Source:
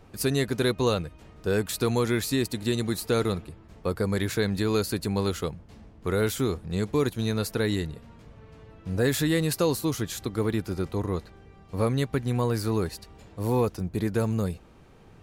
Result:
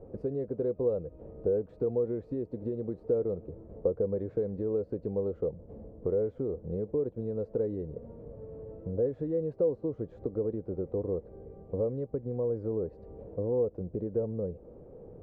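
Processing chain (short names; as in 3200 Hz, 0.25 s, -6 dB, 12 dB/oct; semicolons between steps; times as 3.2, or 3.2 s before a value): compressor 6:1, threshold -35 dBFS, peak gain reduction 15 dB; synth low-pass 510 Hz, resonance Q 4.9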